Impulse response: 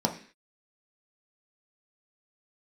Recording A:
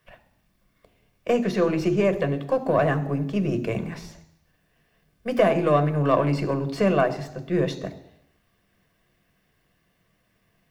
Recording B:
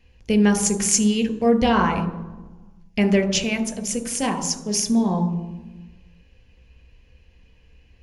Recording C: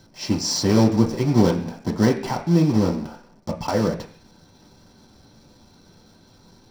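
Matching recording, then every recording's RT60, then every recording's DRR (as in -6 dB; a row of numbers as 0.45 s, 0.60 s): C; 0.80 s, 1.2 s, 0.45 s; 8.5 dB, 8.0 dB, 1.5 dB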